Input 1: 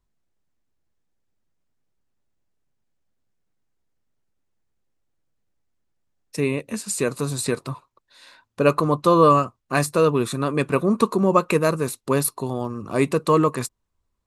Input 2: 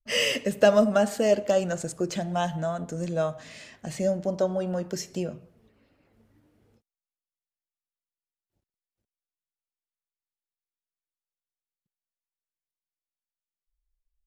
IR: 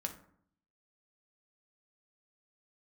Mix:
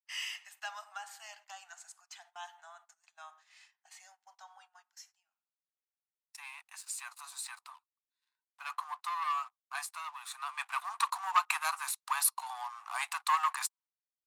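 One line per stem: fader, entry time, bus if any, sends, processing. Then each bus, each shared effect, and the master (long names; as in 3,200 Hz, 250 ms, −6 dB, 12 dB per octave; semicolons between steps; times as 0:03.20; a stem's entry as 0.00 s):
0:10.18 −20 dB → 0:10.90 −10.5 dB, 0.00 s, no send, leveller curve on the samples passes 2
−16.0 dB, 0.00 s, send −6 dB, automatic ducking −24 dB, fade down 1.70 s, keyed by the first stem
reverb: on, RT60 0.60 s, pre-delay 3 ms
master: Butterworth high-pass 760 Hz 96 dB per octave; noise gate −59 dBFS, range −17 dB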